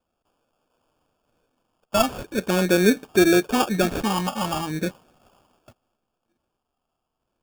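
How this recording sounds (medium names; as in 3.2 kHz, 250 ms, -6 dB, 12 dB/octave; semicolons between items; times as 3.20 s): phasing stages 6, 0.4 Hz, lowest notch 390–4700 Hz; aliases and images of a low sample rate 2 kHz, jitter 0%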